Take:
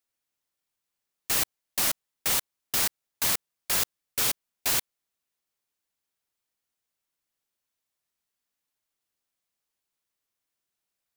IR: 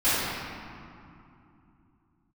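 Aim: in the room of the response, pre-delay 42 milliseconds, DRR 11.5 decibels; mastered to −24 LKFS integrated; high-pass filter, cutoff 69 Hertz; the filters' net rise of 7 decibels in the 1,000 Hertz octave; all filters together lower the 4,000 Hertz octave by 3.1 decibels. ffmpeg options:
-filter_complex "[0:a]highpass=69,equalizer=frequency=1000:width_type=o:gain=9,equalizer=frequency=4000:width_type=o:gain=-4.5,asplit=2[link_01][link_02];[1:a]atrim=start_sample=2205,adelay=42[link_03];[link_02][link_03]afir=irnorm=-1:irlink=0,volume=-28.5dB[link_04];[link_01][link_04]amix=inputs=2:normalize=0,volume=2.5dB"

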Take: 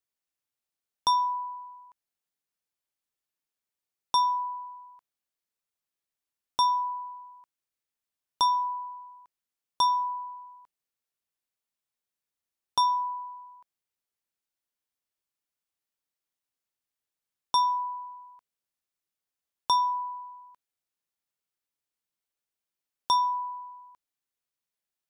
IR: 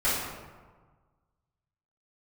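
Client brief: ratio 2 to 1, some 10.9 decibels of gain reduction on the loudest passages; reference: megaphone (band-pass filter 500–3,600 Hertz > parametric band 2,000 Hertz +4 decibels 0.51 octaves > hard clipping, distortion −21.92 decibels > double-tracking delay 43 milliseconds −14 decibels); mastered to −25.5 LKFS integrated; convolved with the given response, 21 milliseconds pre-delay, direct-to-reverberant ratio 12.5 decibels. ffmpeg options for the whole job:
-filter_complex "[0:a]acompressor=threshold=-41dB:ratio=2,asplit=2[link_01][link_02];[1:a]atrim=start_sample=2205,adelay=21[link_03];[link_02][link_03]afir=irnorm=-1:irlink=0,volume=-25.5dB[link_04];[link_01][link_04]amix=inputs=2:normalize=0,highpass=500,lowpass=3600,equalizer=frequency=2000:width_type=o:width=0.51:gain=4,asoftclip=type=hard:threshold=-29.5dB,asplit=2[link_05][link_06];[link_06]adelay=43,volume=-14dB[link_07];[link_05][link_07]amix=inputs=2:normalize=0,volume=14.5dB"

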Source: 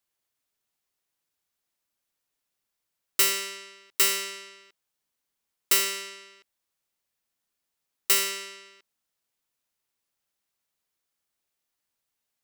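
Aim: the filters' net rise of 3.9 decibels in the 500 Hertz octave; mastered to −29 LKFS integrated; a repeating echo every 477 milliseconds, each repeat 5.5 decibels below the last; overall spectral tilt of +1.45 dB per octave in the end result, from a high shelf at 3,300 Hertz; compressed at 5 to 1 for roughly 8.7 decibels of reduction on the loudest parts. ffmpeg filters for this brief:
ffmpeg -i in.wav -af "equalizer=frequency=500:width_type=o:gain=5.5,highshelf=frequency=3300:gain=5,acompressor=threshold=-22dB:ratio=5,aecho=1:1:477|954|1431|1908|2385|2862|3339:0.531|0.281|0.149|0.079|0.0419|0.0222|0.0118" out.wav

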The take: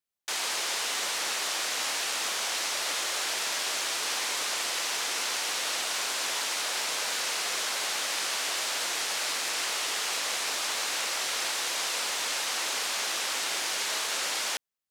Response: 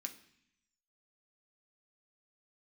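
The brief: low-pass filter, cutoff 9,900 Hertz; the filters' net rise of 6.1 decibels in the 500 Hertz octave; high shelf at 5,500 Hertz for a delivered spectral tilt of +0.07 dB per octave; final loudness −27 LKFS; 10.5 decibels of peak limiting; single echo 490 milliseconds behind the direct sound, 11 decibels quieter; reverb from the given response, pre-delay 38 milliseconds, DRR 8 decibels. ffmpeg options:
-filter_complex "[0:a]lowpass=9900,equalizer=frequency=500:width_type=o:gain=7.5,highshelf=frequency=5500:gain=4.5,alimiter=level_in=1.5dB:limit=-24dB:level=0:latency=1,volume=-1.5dB,aecho=1:1:490:0.282,asplit=2[link_01][link_02];[1:a]atrim=start_sample=2205,adelay=38[link_03];[link_02][link_03]afir=irnorm=-1:irlink=0,volume=-5dB[link_04];[link_01][link_04]amix=inputs=2:normalize=0,volume=4.5dB"

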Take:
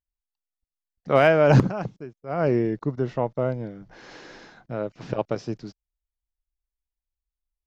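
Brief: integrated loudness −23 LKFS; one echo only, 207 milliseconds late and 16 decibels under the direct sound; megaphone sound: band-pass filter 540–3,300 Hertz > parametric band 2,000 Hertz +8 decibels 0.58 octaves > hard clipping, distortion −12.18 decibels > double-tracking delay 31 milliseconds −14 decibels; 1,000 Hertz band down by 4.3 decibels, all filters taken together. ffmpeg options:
ffmpeg -i in.wav -filter_complex "[0:a]highpass=540,lowpass=3300,equalizer=frequency=1000:width_type=o:gain=-6.5,equalizer=frequency=2000:width_type=o:width=0.58:gain=8,aecho=1:1:207:0.158,asoftclip=type=hard:threshold=-18dB,asplit=2[link_01][link_02];[link_02]adelay=31,volume=-14dB[link_03];[link_01][link_03]amix=inputs=2:normalize=0,volume=6.5dB" out.wav

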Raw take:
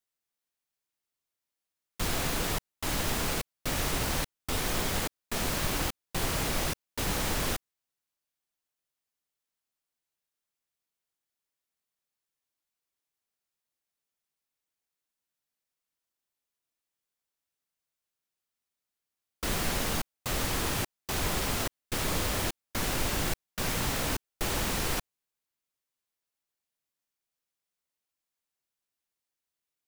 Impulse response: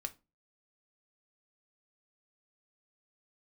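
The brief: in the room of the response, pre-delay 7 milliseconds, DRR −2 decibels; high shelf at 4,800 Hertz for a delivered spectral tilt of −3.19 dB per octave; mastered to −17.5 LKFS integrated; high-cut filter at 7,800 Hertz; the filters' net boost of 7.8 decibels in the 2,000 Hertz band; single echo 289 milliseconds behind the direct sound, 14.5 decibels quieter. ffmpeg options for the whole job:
-filter_complex "[0:a]lowpass=7800,equalizer=frequency=2000:width_type=o:gain=8,highshelf=frequency=4800:gain=9,aecho=1:1:289:0.188,asplit=2[link_01][link_02];[1:a]atrim=start_sample=2205,adelay=7[link_03];[link_02][link_03]afir=irnorm=-1:irlink=0,volume=3.5dB[link_04];[link_01][link_04]amix=inputs=2:normalize=0,volume=6dB"

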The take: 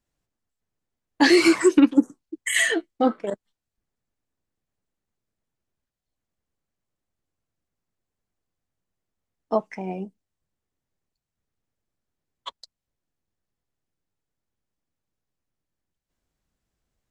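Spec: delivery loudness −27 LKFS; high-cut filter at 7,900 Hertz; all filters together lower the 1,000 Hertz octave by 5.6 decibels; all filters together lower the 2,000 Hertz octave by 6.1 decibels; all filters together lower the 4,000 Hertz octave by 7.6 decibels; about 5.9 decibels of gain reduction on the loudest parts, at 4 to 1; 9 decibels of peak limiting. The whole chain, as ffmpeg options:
ffmpeg -i in.wav -af "lowpass=7900,equalizer=frequency=1000:width_type=o:gain=-6.5,equalizer=frequency=2000:width_type=o:gain=-3.5,equalizer=frequency=4000:width_type=o:gain=-8,acompressor=threshold=-18dB:ratio=4,volume=4dB,alimiter=limit=-15.5dB:level=0:latency=1" out.wav

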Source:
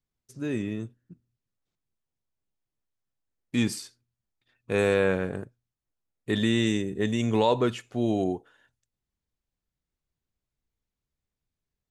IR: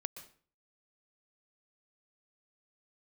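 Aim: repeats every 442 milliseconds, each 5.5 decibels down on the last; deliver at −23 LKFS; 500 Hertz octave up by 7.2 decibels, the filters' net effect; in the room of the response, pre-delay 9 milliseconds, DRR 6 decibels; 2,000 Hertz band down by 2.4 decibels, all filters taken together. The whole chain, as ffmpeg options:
-filter_complex "[0:a]equalizer=frequency=500:width_type=o:gain=8.5,equalizer=frequency=2000:width_type=o:gain=-3.5,aecho=1:1:442|884|1326|1768|2210|2652|3094:0.531|0.281|0.149|0.079|0.0419|0.0222|0.0118,asplit=2[link_01][link_02];[1:a]atrim=start_sample=2205,adelay=9[link_03];[link_02][link_03]afir=irnorm=-1:irlink=0,volume=-4.5dB[link_04];[link_01][link_04]amix=inputs=2:normalize=0,volume=-0.5dB"

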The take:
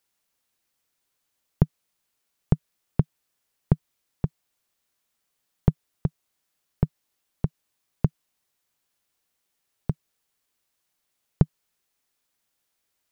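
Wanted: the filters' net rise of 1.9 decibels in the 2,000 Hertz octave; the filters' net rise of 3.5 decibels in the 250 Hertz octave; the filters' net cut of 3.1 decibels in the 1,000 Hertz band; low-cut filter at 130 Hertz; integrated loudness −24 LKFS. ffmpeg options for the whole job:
ffmpeg -i in.wav -af "highpass=130,equalizer=frequency=250:width_type=o:gain=8.5,equalizer=frequency=1000:width_type=o:gain=-6,equalizer=frequency=2000:width_type=o:gain=4.5,volume=4.5dB" out.wav

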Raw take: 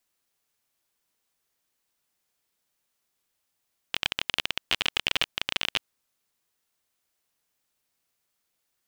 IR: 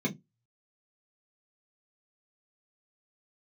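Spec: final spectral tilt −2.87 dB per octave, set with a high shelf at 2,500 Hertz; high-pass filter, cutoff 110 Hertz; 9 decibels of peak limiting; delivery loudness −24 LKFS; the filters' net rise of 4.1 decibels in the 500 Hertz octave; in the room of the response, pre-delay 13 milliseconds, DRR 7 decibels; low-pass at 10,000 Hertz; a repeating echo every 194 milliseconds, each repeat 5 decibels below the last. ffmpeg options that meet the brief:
-filter_complex "[0:a]highpass=110,lowpass=10000,equalizer=frequency=500:width_type=o:gain=5.5,highshelf=frequency=2500:gain=-7.5,alimiter=limit=-17.5dB:level=0:latency=1,aecho=1:1:194|388|582|776|970|1164|1358:0.562|0.315|0.176|0.0988|0.0553|0.031|0.0173,asplit=2[link_01][link_02];[1:a]atrim=start_sample=2205,adelay=13[link_03];[link_02][link_03]afir=irnorm=-1:irlink=0,volume=-13.5dB[link_04];[link_01][link_04]amix=inputs=2:normalize=0,volume=14dB"

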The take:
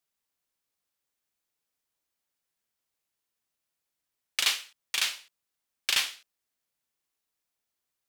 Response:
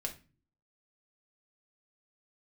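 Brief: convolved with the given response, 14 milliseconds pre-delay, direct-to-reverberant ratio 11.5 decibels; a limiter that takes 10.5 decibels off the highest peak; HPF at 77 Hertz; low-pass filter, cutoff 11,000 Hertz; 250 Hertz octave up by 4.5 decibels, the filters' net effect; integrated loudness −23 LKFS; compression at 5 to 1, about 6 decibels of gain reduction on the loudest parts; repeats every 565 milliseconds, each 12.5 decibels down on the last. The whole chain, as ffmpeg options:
-filter_complex "[0:a]highpass=77,lowpass=11000,equalizer=frequency=250:width_type=o:gain=6,acompressor=threshold=-28dB:ratio=5,alimiter=limit=-23dB:level=0:latency=1,aecho=1:1:565|1130|1695:0.237|0.0569|0.0137,asplit=2[link_01][link_02];[1:a]atrim=start_sample=2205,adelay=14[link_03];[link_02][link_03]afir=irnorm=-1:irlink=0,volume=-11.5dB[link_04];[link_01][link_04]amix=inputs=2:normalize=0,volume=16dB"

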